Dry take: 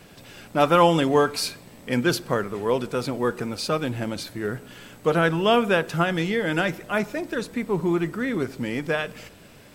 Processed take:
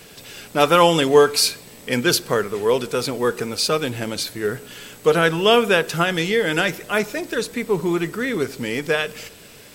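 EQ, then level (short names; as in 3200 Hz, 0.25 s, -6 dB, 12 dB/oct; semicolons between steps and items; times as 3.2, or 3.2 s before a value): bell 440 Hz +7.5 dB 0.31 oct; high shelf 2000 Hz +11 dB; 0.0 dB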